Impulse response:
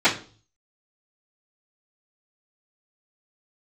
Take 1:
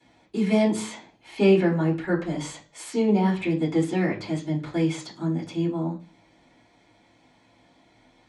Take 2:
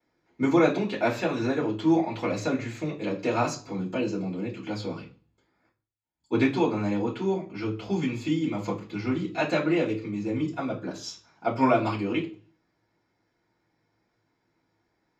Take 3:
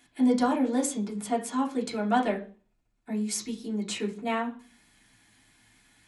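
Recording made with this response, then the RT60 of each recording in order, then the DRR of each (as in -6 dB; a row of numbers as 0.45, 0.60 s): 2; 0.40, 0.40, 0.40 s; -14.0, -23.5, -4.5 dB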